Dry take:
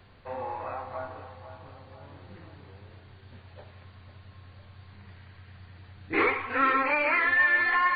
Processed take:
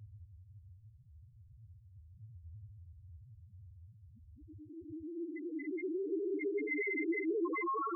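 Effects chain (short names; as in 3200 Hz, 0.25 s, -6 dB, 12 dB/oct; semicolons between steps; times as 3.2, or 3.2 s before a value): Paulstretch 27×, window 0.05 s, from 5.93; loudest bins only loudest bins 1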